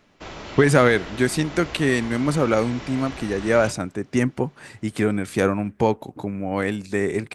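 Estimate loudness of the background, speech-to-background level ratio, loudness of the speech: −36.5 LKFS, 14.0 dB, −22.5 LKFS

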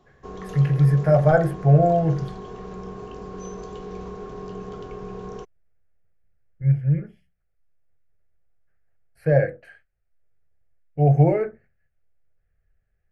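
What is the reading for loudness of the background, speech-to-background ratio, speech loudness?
−37.0 LKFS, 17.0 dB, −20.0 LKFS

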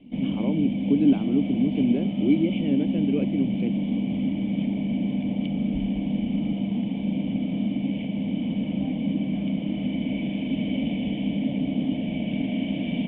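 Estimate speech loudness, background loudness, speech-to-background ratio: −25.5 LKFS, −27.0 LKFS, 1.5 dB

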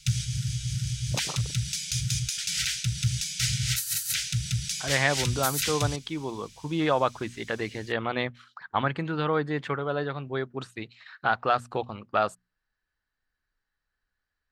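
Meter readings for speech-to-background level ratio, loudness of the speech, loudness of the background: −1.0 dB, −29.0 LKFS, −28.0 LKFS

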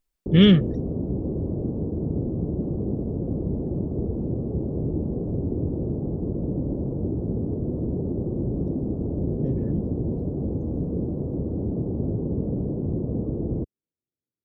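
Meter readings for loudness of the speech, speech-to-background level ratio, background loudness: −19.0 LKFS, 9.0 dB, −28.0 LKFS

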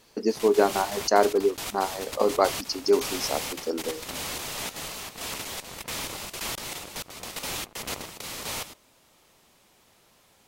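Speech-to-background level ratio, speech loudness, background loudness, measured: 8.5 dB, −25.5 LKFS, −34.0 LKFS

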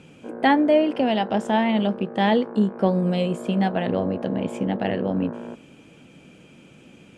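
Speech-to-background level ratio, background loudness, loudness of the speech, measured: 13.0 dB, −35.5 LKFS, −22.5 LKFS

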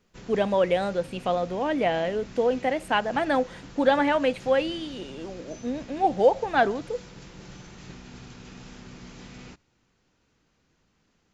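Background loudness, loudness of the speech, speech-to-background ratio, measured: −45.0 LKFS, −25.0 LKFS, 20.0 dB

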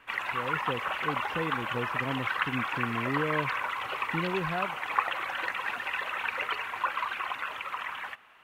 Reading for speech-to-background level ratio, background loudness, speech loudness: −4.5 dB, −31.5 LKFS, −36.0 LKFS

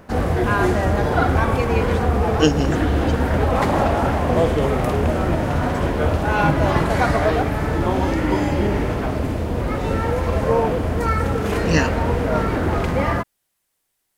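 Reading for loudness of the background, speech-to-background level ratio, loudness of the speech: −20.0 LKFS, −4.0 dB, −24.0 LKFS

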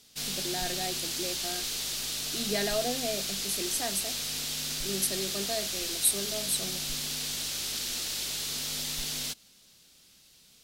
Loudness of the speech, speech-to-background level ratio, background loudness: −33.0 LKFS, −2.0 dB, −31.0 LKFS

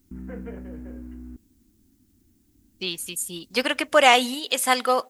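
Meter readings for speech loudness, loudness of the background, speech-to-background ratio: −21.5 LKFS, −39.5 LKFS, 18.0 dB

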